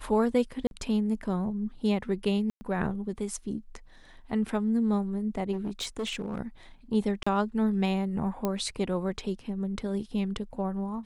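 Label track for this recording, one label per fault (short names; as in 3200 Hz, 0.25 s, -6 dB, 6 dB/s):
0.670000	0.710000	gap 41 ms
2.500000	2.610000	gap 0.11 s
5.520000	6.390000	clipped -28 dBFS
7.230000	7.260000	gap 35 ms
8.450000	8.450000	pop -15 dBFS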